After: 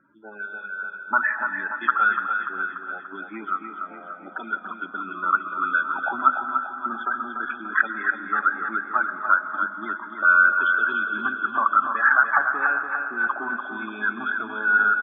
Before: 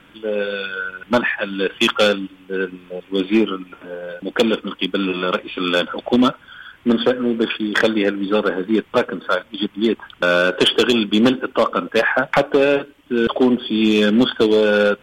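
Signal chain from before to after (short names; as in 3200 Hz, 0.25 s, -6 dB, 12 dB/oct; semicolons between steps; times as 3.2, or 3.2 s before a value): high shelf 7800 Hz -9.5 dB; notches 50/100/150/200/250 Hz; loudest bins only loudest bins 32; auto-wah 600–1400 Hz, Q 3.2, up, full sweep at -14.5 dBFS; fixed phaser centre 1200 Hz, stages 4; feedback echo 0.291 s, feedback 56%, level -6.5 dB; on a send at -11 dB: reverb RT60 2.5 s, pre-delay 80 ms; on the sum: gain +6.5 dB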